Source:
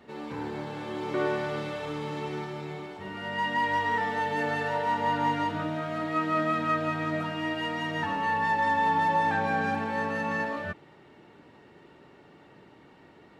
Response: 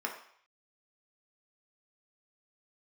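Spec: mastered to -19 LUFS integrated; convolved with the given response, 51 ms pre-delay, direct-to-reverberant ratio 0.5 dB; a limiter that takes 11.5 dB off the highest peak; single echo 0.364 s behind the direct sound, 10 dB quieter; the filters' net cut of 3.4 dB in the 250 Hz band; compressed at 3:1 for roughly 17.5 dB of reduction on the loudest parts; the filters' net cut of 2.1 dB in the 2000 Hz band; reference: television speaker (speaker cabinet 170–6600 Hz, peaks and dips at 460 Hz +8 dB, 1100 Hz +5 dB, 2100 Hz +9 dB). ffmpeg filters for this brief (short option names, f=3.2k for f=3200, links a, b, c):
-filter_complex "[0:a]equalizer=f=250:t=o:g=-5,equalizer=f=2k:t=o:g=-7,acompressor=threshold=-49dB:ratio=3,alimiter=level_in=21.5dB:limit=-24dB:level=0:latency=1,volume=-21.5dB,aecho=1:1:364:0.316,asplit=2[a][b];[1:a]atrim=start_sample=2205,adelay=51[c];[b][c]afir=irnorm=-1:irlink=0,volume=-5dB[d];[a][d]amix=inputs=2:normalize=0,highpass=f=170:w=0.5412,highpass=f=170:w=1.3066,equalizer=f=460:t=q:w=4:g=8,equalizer=f=1.1k:t=q:w=4:g=5,equalizer=f=2.1k:t=q:w=4:g=9,lowpass=f=6.6k:w=0.5412,lowpass=f=6.6k:w=1.3066,volume=28.5dB"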